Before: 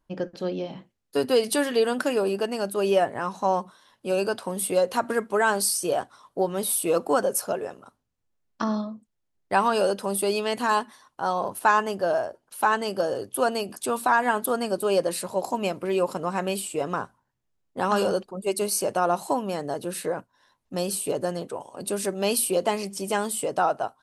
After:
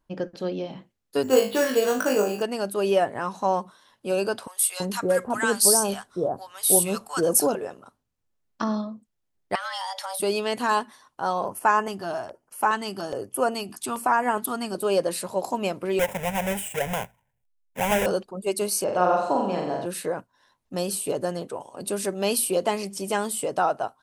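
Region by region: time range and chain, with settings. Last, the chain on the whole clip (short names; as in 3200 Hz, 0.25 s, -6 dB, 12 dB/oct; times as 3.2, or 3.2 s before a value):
1.23–2.42 flutter echo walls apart 3.3 m, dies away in 0.32 s + careless resampling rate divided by 6×, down filtered, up hold
4.47–7.55 tone controls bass +5 dB, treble +7 dB + bands offset in time highs, lows 0.33 s, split 1000 Hz + mismatched tape noise reduction decoder only
9.55–10.2 weighting filter D + compressor 8:1, threshold -28 dBFS + frequency shift +370 Hz
11.46–14.75 notch 1600 Hz, Q 15 + LFO notch square 1.2 Hz 530–3800 Hz
15.99–18.06 half-waves squared off + fixed phaser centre 1200 Hz, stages 6
18.84–19.86 air absorption 120 m + flutter echo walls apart 7.6 m, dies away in 0.8 s
whole clip: dry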